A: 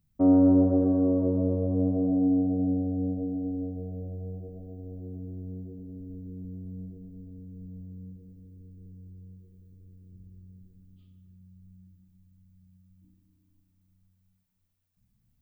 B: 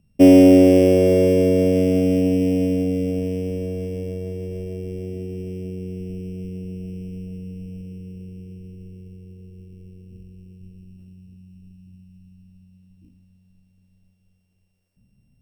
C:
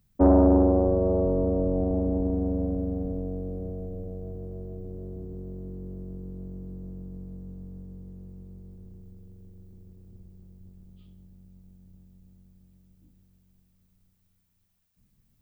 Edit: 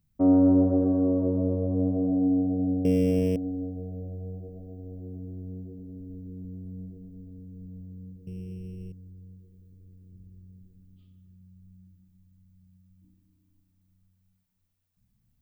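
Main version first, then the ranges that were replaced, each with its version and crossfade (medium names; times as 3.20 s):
A
2.85–3.36 s: from B
8.27–8.92 s: from B
not used: C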